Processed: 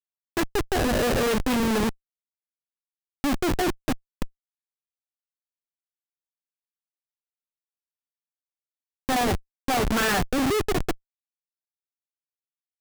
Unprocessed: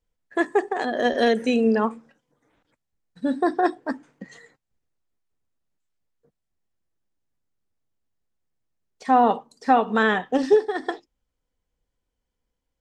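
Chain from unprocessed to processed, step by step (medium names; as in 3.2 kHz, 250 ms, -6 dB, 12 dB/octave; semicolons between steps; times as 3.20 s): dynamic bell 1.4 kHz, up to +4 dB, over -33 dBFS, Q 1.7; rotary cabinet horn 5 Hz, later 0.6 Hz, at 3.95 s; Schmitt trigger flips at -28.5 dBFS; trim +5.5 dB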